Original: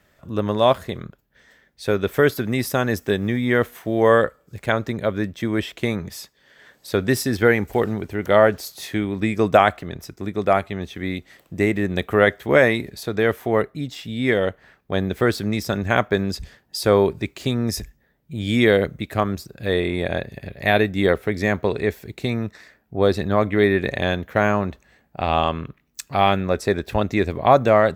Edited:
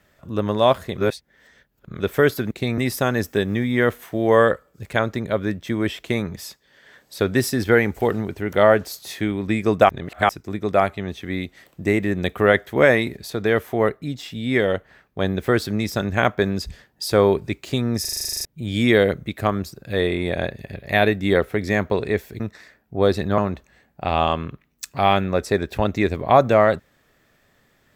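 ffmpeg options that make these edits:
-filter_complex "[0:a]asplit=20[a][b][c][d][e][f][g][h][i][j][k][l][m][n][o][p][q][r][s][t];[a]atrim=end=0.982[u];[b]atrim=start=0.978:end=2.002,asetpts=PTS-STARTPTS,areverse[v];[c]atrim=start=1.998:end=2.512[w];[d]atrim=start=22.128:end=22.402[x];[e]atrim=start=2.508:end=9.622[y];[f]atrim=start=9.618:end=10.022,asetpts=PTS-STARTPTS,areverse[z];[g]atrim=start=10.018:end=17.782[aa];[h]atrim=start=17.738:end=17.782[ab];[i]atrim=start=17.738:end=17.782[ac];[j]atrim=start=17.738:end=17.782[ad];[k]atrim=start=17.738:end=17.782[ae];[l]atrim=start=17.738:end=17.782[af];[m]atrim=start=17.738:end=17.782[ag];[n]atrim=start=17.738:end=17.782[ah];[o]atrim=start=17.738:end=17.782[ai];[p]atrim=start=17.738:end=17.782[aj];[q]atrim=start=17.738:end=17.782[ak];[r]atrim=start=18.178:end=22.132[al];[s]atrim=start=22.398:end=23.382[am];[t]atrim=start=24.538[an];[u][v]acrossfade=d=0.004:c1=hsin:c2=hsin[ao];[ao][w]acrossfade=d=0.004:c1=hsin:c2=hsin[ap];[ap][x]acrossfade=d=0.004:c1=hsin:c2=hsin[aq];[aq][y]acrossfade=d=0.004:c1=hsin:c2=hsin[ar];[ar][z]acrossfade=d=0.004:c1=hsin:c2=hsin[as];[as][aa]acrossfade=d=0.004:c1=hsin:c2=hsin[at];[at][ab]acrossfade=d=0.004:c1=hsin:c2=hsin[au];[au][ac]acrossfade=d=0.004:c1=hsin:c2=hsin[av];[av][ad]acrossfade=d=0.004:c1=hsin:c2=hsin[aw];[aw][ae]acrossfade=d=0.004:c1=hsin:c2=hsin[ax];[ax][af]acrossfade=d=0.004:c1=hsin:c2=hsin[ay];[ay][ag]acrossfade=d=0.004:c1=hsin:c2=hsin[az];[az][ah]acrossfade=d=0.004:c1=hsin:c2=hsin[ba];[ba][ai]acrossfade=d=0.004:c1=hsin:c2=hsin[bb];[bb][aj]acrossfade=d=0.004:c1=hsin:c2=hsin[bc];[bc][ak]acrossfade=d=0.004:c1=hsin:c2=hsin[bd];[bd][al]acrossfade=d=0.004:c1=hsin:c2=hsin[be];[be][am]acrossfade=d=0.004:c1=hsin:c2=hsin[bf];[bf][an]acrossfade=d=0.004:c1=hsin:c2=hsin"

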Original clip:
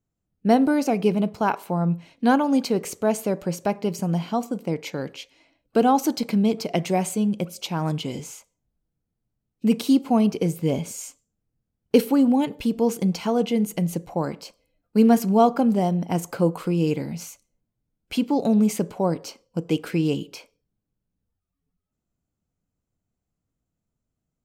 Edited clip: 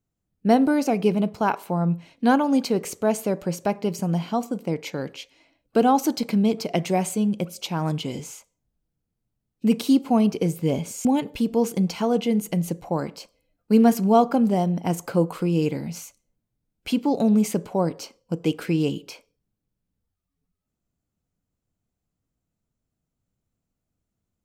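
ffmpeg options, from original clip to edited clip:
-filter_complex "[0:a]asplit=2[a][b];[a]atrim=end=11.052[c];[b]atrim=start=12.298[d];[c][d]acrossfade=d=0.004:c1=hsin:c2=hsin"

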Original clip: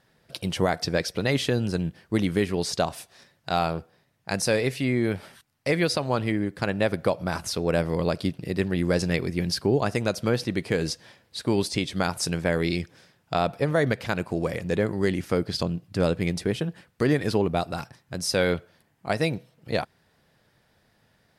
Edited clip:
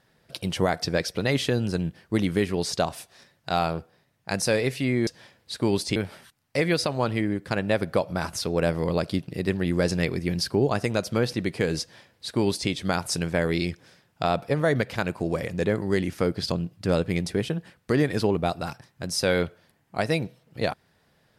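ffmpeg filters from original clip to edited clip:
-filter_complex "[0:a]asplit=3[a][b][c];[a]atrim=end=5.072[d];[b]atrim=start=10.918:end=11.812[e];[c]atrim=start=5.068[f];[d][e]acrossfade=d=0.004:c1=hsin:c2=hsin[g];[g][f]acrossfade=d=0.004:c1=hsin:c2=hsin"

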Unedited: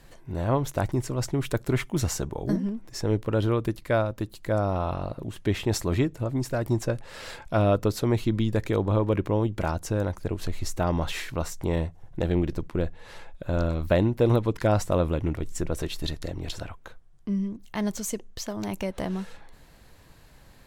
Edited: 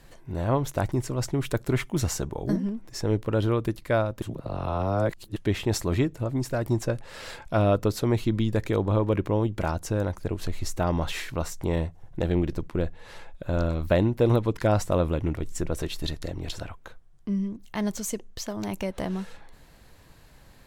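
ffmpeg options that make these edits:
-filter_complex "[0:a]asplit=3[a][b][c];[a]atrim=end=4.222[d];[b]atrim=start=4.218:end=5.362,asetpts=PTS-STARTPTS,areverse[e];[c]atrim=start=5.358[f];[d][e]acrossfade=d=0.004:c1=hsin:c2=hsin[g];[g][f]acrossfade=d=0.004:c1=hsin:c2=hsin"

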